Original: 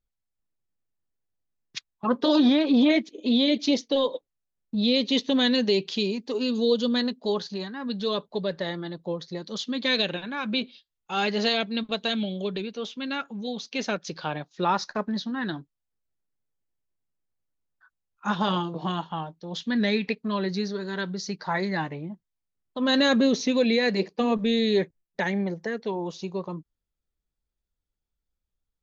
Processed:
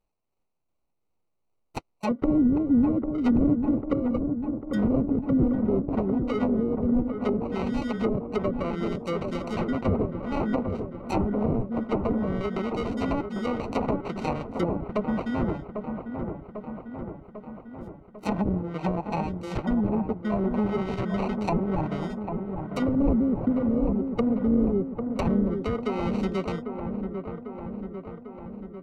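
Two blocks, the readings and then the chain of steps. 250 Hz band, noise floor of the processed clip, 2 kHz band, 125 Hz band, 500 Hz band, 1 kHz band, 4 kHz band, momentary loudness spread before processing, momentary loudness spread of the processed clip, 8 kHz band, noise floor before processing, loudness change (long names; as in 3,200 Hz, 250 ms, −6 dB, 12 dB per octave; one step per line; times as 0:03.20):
+1.5 dB, −74 dBFS, −9.5 dB, +6.5 dB, −1.5 dB, −1.5 dB, −19.0 dB, 12 LU, 14 LU, can't be measured, −84 dBFS, −1.0 dB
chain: high-shelf EQ 2,700 Hz +6.5 dB
amplitude tremolo 2.6 Hz, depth 30%
sample-rate reduction 1,700 Hz, jitter 0%
treble cut that deepens with the level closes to 310 Hz, closed at −21.5 dBFS
delay with a low-pass on its return 797 ms, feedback 64%, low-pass 1,400 Hz, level −6.5 dB
level +2.5 dB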